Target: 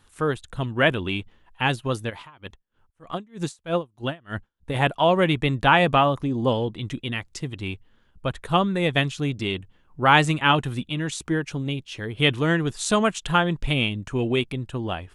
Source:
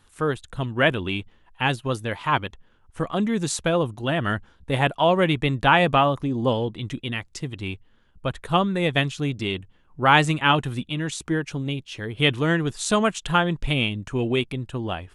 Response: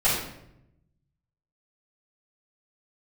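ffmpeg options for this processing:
-filter_complex "[0:a]asplit=3[link_01][link_02][link_03];[link_01]afade=type=out:start_time=2.09:duration=0.02[link_04];[link_02]aeval=exprs='val(0)*pow(10,-32*(0.5-0.5*cos(2*PI*3.2*n/s))/20)':channel_layout=same,afade=type=in:start_time=2.09:duration=0.02,afade=type=out:start_time=4.74:duration=0.02[link_05];[link_03]afade=type=in:start_time=4.74:duration=0.02[link_06];[link_04][link_05][link_06]amix=inputs=3:normalize=0"

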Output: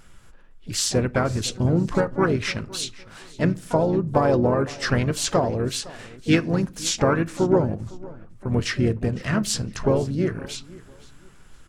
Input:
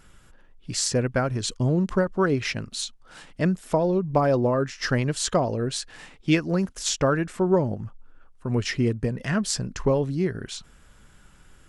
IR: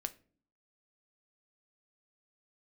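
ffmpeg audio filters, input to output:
-filter_complex "[0:a]aecho=1:1:509|1018:0.0944|0.0264,asplit=4[link_01][link_02][link_03][link_04];[link_02]asetrate=29433,aresample=44100,atempo=1.49831,volume=-11dB[link_05];[link_03]asetrate=37084,aresample=44100,atempo=1.18921,volume=-9dB[link_06];[link_04]asetrate=66075,aresample=44100,atempo=0.66742,volume=-15dB[link_07];[link_01][link_05][link_06][link_07]amix=inputs=4:normalize=0,asplit=2[link_08][link_09];[1:a]atrim=start_sample=2205[link_10];[link_09][link_10]afir=irnorm=-1:irlink=0,volume=1dB[link_11];[link_08][link_11]amix=inputs=2:normalize=0,volume=-5dB"

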